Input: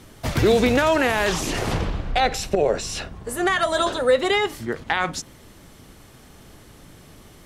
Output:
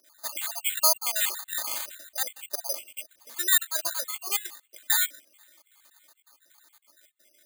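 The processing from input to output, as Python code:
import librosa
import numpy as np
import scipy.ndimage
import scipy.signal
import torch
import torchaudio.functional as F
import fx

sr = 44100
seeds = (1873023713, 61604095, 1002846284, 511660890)

y = fx.spec_dropout(x, sr, seeds[0], share_pct=61)
y = fx.env_lowpass(y, sr, base_hz=1700.0, full_db=-19.0)
y = scipy.signal.sosfilt(scipy.signal.butter(2, 1000.0, 'highpass', fs=sr, output='sos'), y)
y = fx.high_shelf(y, sr, hz=4700.0, db=10.0)
y = y + 0.86 * np.pad(y, (int(3.3 * sr / 1000.0), 0))[:len(y)]
y = fx.echo_wet_highpass(y, sr, ms=506, feedback_pct=63, hz=3900.0, wet_db=-22.5)
y = (np.kron(scipy.signal.resample_poly(y, 1, 8), np.eye(8)[0]) * 8)[:len(y)]
y = y * 10.0 ** (-9.0 / 20.0)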